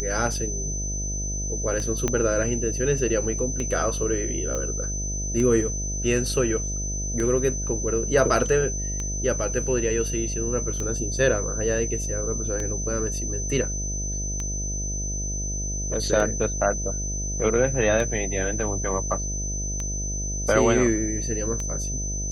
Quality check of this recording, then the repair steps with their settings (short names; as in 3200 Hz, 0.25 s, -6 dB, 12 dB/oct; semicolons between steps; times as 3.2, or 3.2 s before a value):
buzz 50 Hz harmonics 14 -30 dBFS
tick 33 1/3 rpm -16 dBFS
tone 6100 Hz -30 dBFS
2.08 pop -10 dBFS
4.55 pop -17 dBFS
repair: de-click; de-hum 50 Hz, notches 14; notch 6100 Hz, Q 30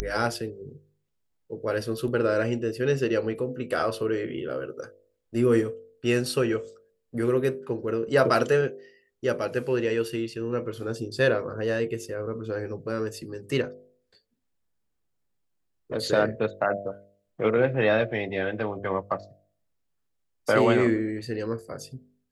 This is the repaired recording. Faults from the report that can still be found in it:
tick 33 1/3 rpm
2.08 pop
4.55 pop